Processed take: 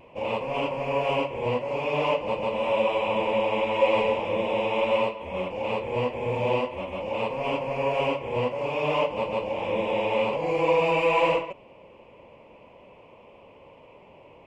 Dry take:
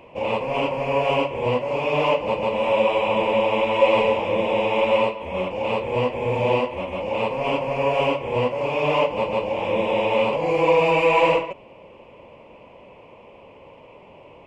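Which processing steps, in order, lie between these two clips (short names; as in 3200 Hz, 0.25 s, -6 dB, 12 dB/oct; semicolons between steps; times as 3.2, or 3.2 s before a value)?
vibrato 0.47 Hz 14 cents; gain -4.5 dB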